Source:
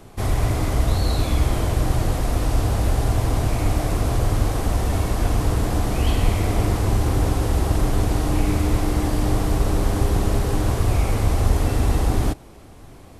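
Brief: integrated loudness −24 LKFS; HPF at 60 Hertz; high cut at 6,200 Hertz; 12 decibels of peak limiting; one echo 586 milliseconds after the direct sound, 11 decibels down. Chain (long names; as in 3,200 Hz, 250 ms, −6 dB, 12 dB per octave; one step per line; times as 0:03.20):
high-pass filter 60 Hz
low-pass filter 6,200 Hz
brickwall limiter −20.5 dBFS
single-tap delay 586 ms −11 dB
level +5 dB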